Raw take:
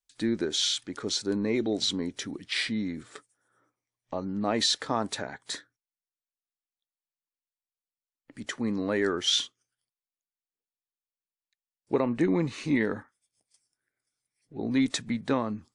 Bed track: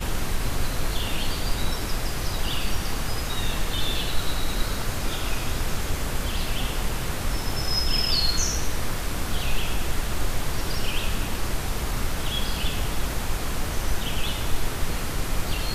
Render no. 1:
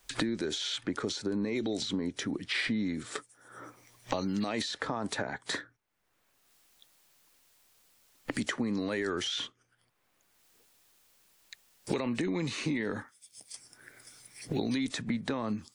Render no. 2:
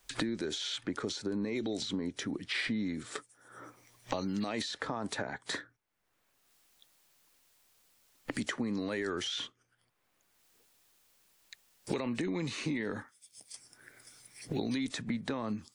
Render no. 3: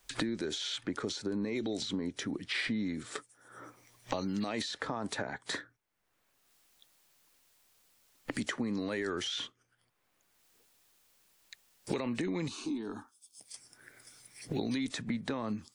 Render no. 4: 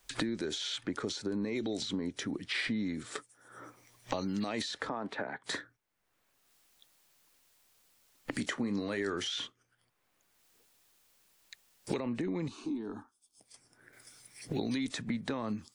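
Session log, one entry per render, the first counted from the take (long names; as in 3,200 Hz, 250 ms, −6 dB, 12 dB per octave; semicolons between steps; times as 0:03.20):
brickwall limiter −23 dBFS, peak gain reduction 9.5 dB; multiband upward and downward compressor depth 100%
level −2.5 dB
0:12.48–0:13.40: phaser with its sweep stopped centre 530 Hz, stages 6
0:04.89–0:05.44: three-way crossover with the lows and the highs turned down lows −13 dB, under 170 Hz, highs −23 dB, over 3,500 Hz; 0:08.30–0:09.29: double-tracking delay 30 ms −12.5 dB; 0:11.97–0:13.93: high-shelf EQ 2,000 Hz −10 dB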